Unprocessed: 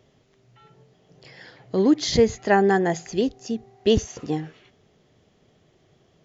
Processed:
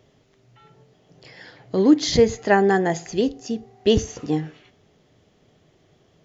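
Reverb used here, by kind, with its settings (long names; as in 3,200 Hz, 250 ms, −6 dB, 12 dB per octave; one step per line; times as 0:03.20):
feedback delay network reverb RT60 0.44 s, low-frequency decay 0.95×, high-frequency decay 0.75×, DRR 14.5 dB
level +1.5 dB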